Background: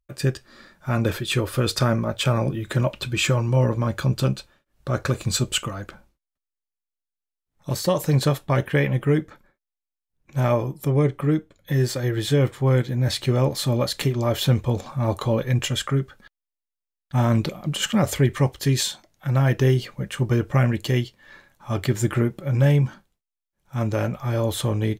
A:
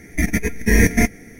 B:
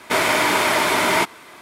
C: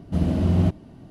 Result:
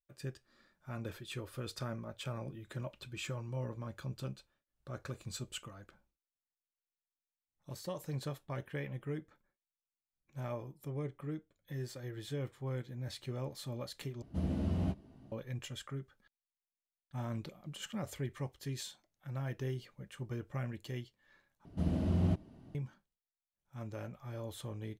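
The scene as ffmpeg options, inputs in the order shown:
ffmpeg -i bed.wav -i cue0.wav -i cue1.wav -i cue2.wav -filter_complex "[3:a]asplit=2[link_01][link_02];[0:a]volume=-20dB[link_03];[link_01]asplit=2[link_04][link_05];[link_05]adelay=15,volume=-6dB[link_06];[link_04][link_06]amix=inputs=2:normalize=0[link_07];[link_03]asplit=3[link_08][link_09][link_10];[link_08]atrim=end=14.224[link_11];[link_07]atrim=end=1.1,asetpts=PTS-STARTPTS,volume=-13.5dB[link_12];[link_09]atrim=start=15.316:end=21.654[link_13];[link_02]atrim=end=1.1,asetpts=PTS-STARTPTS,volume=-11dB[link_14];[link_10]atrim=start=22.746[link_15];[link_11][link_12]acrossfade=duration=0.004:curve1=hsin:curve2=hsin[link_16];[link_16][link_13]acrossfade=duration=0.004:curve1=hsin:curve2=hsin[link_17];[link_17][link_14]acrossfade=duration=0.004:curve1=hsin:curve2=hsin[link_18];[link_18][link_15]acrossfade=duration=0.004:curve1=hsin:curve2=hsin" out.wav

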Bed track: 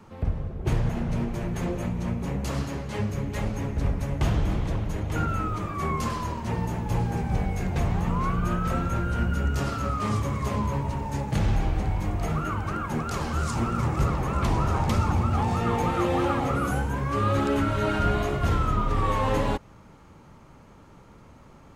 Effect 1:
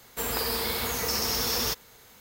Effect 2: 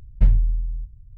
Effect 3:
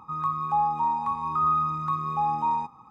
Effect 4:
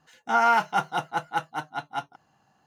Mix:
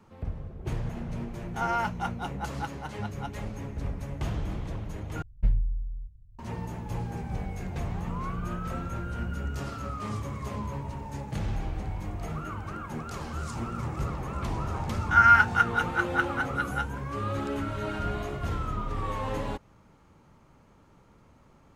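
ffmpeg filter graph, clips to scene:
ffmpeg -i bed.wav -i cue0.wav -i cue1.wav -i cue2.wav -i cue3.wav -filter_complex "[4:a]asplit=2[link_01][link_02];[0:a]volume=-7.5dB[link_03];[link_02]highpass=frequency=1500:width_type=q:width=4.9[link_04];[link_03]asplit=2[link_05][link_06];[link_05]atrim=end=5.224[link_07];[2:a]atrim=end=1.17,asetpts=PTS-STARTPTS,volume=-8.5dB[link_08];[link_06]atrim=start=6.386[link_09];[link_01]atrim=end=2.66,asetpts=PTS-STARTPTS,volume=-8.5dB,afade=type=in:duration=0.004:curve=hsin,afade=type=out:start_time=2.656:duration=0.004:curve=hsin,adelay=1270[link_10];[link_04]atrim=end=2.66,asetpts=PTS-STARTPTS,volume=-5dB,afade=type=in:duration=0.004:curve=hsin,afade=type=out:start_time=2.656:duration=0.004:curve=hsin,adelay=14820[link_11];[link_07][link_08]acrossfade=duration=0.004:curve1=hsin:curve2=hsin[link_12];[link_12][link_09]acrossfade=duration=0.004:curve1=hsin:curve2=hsin[link_13];[link_13][link_10][link_11]amix=inputs=3:normalize=0" out.wav

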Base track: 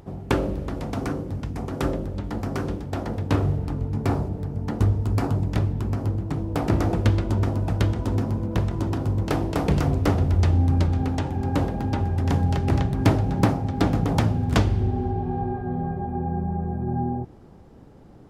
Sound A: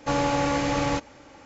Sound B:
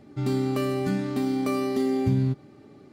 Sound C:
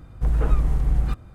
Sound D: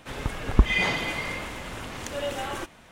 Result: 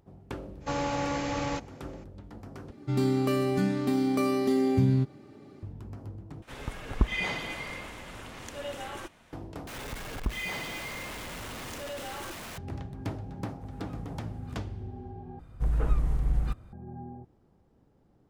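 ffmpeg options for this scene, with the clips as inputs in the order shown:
ffmpeg -i bed.wav -i cue0.wav -i cue1.wav -i cue2.wav -i cue3.wav -filter_complex "[4:a]asplit=2[link_01][link_02];[3:a]asplit=2[link_03][link_04];[0:a]volume=-16.5dB[link_05];[link_02]aeval=exprs='val(0)+0.5*0.0841*sgn(val(0))':channel_layout=same[link_06];[link_03]highpass=93[link_07];[link_05]asplit=5[link_08][link_09][link_10][link_11][link_12];[link_08]atrim=end=2.714[link_13];[2:a]atrim=end=2.92,asetpts=PTS-STARTPTS,volume=-0.5dB[link_14];[link_09]atrim=start=5.626:end=6.424[link_15];[link_01]atrim=end=2.91,asetpts=PTS-STARTPTS,volume=-7dB[link_16];[link_10]atrim=start=9.326:end=9.674[link_17];[link_06]atrim=end=2.91,asetpts=PTS-STARTPTS,volume=-14.5dB[link_18];[link_11]atrim=start=12.576:end=15.394[link_19];[link_04]atrim=end=1.34,asetpts=PTS-STARTPTS,volume=-6dB[link_20];[link_12]atrim=start=16.726[link_21];[1:a]atrim=end=1.45,asetpts=PTS-STARTPTS,volume=-6.5dB,afade=type=in:duration=0.02,afade=type=out:start_time=1.43:duration=0.02,adelay=600[link_22];[link_07]atrim=end=1.34,asetpts=PTS-STARTPTS,volume=-18dB,afade=type=in:duration=0.004:curve=hsin,afade=type=out:start_time=1.336:duration=0.004:curve=hsin,adelay=13390[link_23];[link_13][link_14]acrossfade=duration=0.004:curve1=hsin:curve2=hsin[link_24];[link_24][link_15]acrossfade=duration=0.004:curve1=hsin:curve2=hsin[link_25];[link_25][link_16]acrossfade=duration=0.004:curve1=hsin:curve2=hsin[link_26];[link_26][link_17]acrossfade=duration=0.004:curve1=hsin:curve2=hsin[link_27];[link_27][link_18]acrossfade=duration=0.004:curve1=hsin:curve2=hsin[link_28];[link_28][link_19]acrossfade=duration=0.004:curve1=hsin:curve2=hsin[link_29];[link_29][link_20]acrossfade=duration=0.004:curve1=hsin:curve2=hsin[link_30];[link_30][link_21]acrossfade=duration=0.004:curve1=hsin:curve2=hsin[link_31];[link_31][link_22][link_23]amix=inputs=3:normalize=0" out.wav

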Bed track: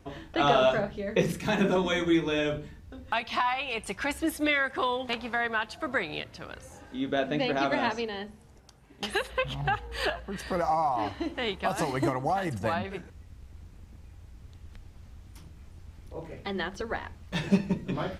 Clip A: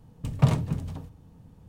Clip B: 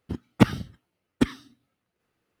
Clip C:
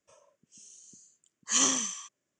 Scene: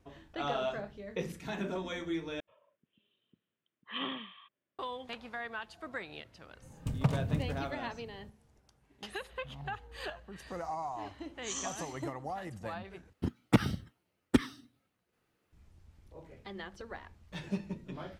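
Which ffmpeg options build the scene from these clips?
ffmpeg -i bed.wav -i cue0.wav -i cue1.wav -i cue2.wav -filter_complex "[3:a]asplit=2[link_01][link_02];[0:a]volume=-11.5dB[link_03];[link_01]aresample=8000,aresample=44100[link_04];[1:a]acompressor=threshold=-28dB:ratio=12:attack=78:release=205:knee=1:detection=peak[link_05];[2:a]alimiter=limit=-10dB:level=0:latency=1:release=71[link_06];[link_03]asplit=3[link_07][link_08][link_09];[link_07]atrim=end=2.404[link_10];[link_04]atrim=end=2.39,asetpts=PTS-STARTPTS,volume=-6dB[link_11];[link_08]atrim=start=4.786:end=13.134[link_12];[link_06]atrim=end=2.4,asetpts=PTS-STARTPTS,volume=-1dB[link_13];[link_09]atrim=start=15.526[link_14];[link_05]atrim=end=1.68,asetpts=PTS-STARTPTS,volume=-2.5dB,afade=type=in:duration=0.004:curve=hsin,afade=type=out:start_time=1.676:duration=0.004:curve=hsin,adelay=6620[link_15];[link_02]atrim=end=2.39,asetpts=PTS-STARTPTS,volume=-14.5dB,afade=type=in:duration=0.004:curve=hsin,afade=type=out:start_time=2.386:duration=0.004:curve=hsin,adelay=9950[link_16];[link_10][link_11]acrossfade=duration=0.004:curve1=hsin:curve2=hsin[link_17];[link_17][link_12]acrossfade=duration=0.004:curve1=hsin:curve2=hsin[link_18];[link_18][link_13]acrossfade=duration=0.004:curve1=hsin:curve2=hsin[link_19];[link_19][link_14]acrossfade=duration=0.004:curve1=hsin:curve2=hsin[link_20];[link_20][link_15][link_16]amix=inputs=3:normalize=0" out.wav

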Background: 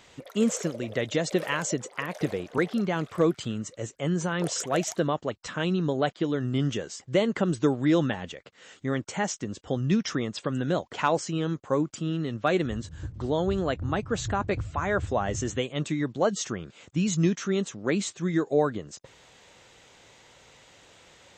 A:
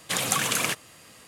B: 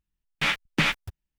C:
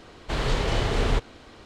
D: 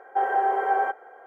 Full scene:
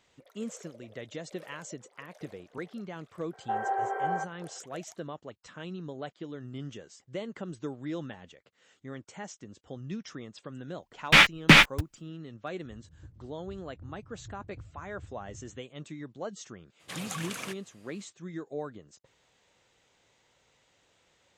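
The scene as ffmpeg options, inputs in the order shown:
ffmpeg -i bed.wav -i cue0.wav -i cue1.wav -i cue2.wav -i cue3.wav -filter_complex "[0:a]volume=-13.5dB[link_01];[2:a]dynaudnorm=framelen=220:gausssize=3:maxgain=12.5dB[link_02];[1:a]highshelf=frequency=7300:gain=-7.5[link_03];[4:a]atrim=end=1.26,asetpts=PTS-STARTPTS,volume=-7.5dB,afade=type=in:duration=0.004:curve=hsin,afade=type=out:start_time=1.256:duration=0.004:curve=hsin,adelay=146853S[link_04];[link_02]atrim=end=1.38,asetpts=PTS-STARTPTS,volume=-2dB,afade=type=in:duration=0.004:curve=hsin,afade=type=out:start_time=1.376:duration=0.004:curve=hsin,adelay=10710[link_05];[link_03]atrim=end=1.27,asetpts=PTS-STARTPTS,volume=-12dB,afade=type=in:duration=0.02,afade=type=out:start_time=1.25:duration=0.02,adelay=16790[link_06];[link_01][link_04][link_05][link_06]amix=inputs=4:normalize=0" out.wav

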